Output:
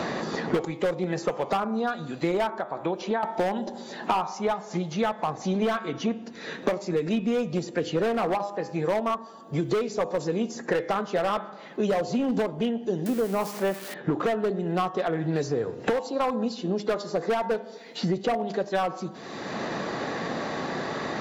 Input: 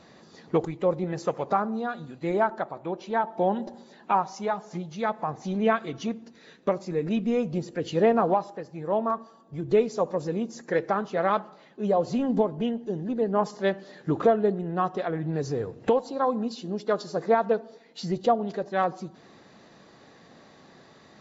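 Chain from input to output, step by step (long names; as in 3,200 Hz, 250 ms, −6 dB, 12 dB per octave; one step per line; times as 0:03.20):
0:13.06–0:13.94: spike at every zero crossing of −22 dBFS
low-shelf EQ 150 Hz −8.5 dB
hum removal 101.2 Hz, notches 37
0:02.53–0:03.23: downward compressor 4 to 1, threshold −32 dBFS, peak gain reduction 10 dB
hard clipping −22 dBFS, distortion −10 dB
multiband upward and downward compressor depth 100%
level +2 dB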